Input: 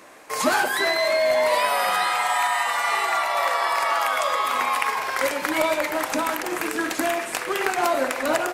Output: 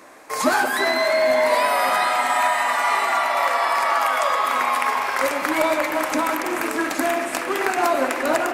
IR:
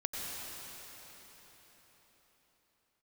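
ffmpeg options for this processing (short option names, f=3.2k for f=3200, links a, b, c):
-filter_complex "[0:a]asoftclip=type=hard:threshold=-5dB,asplit=2[a][b];[b]highpass=190,equalizer=f=250:t=q:w=4:g=8,equalizer=f=470:t=q:w=4:g=-9,equalizer=f=2.7k:t=q:w=4:g=4,lowpass=f=3.2k:w=0.5412,lowpass=f=3.2k:w=1.3066[c];[1:a]atrim=start_sample=2205,asetrate=24255,aresample=44100[d];[c][d]afir=irnorm=-1:irlink=0,volume=-12.5dB[e];[a][e]amix=inputs=2:normalize=0"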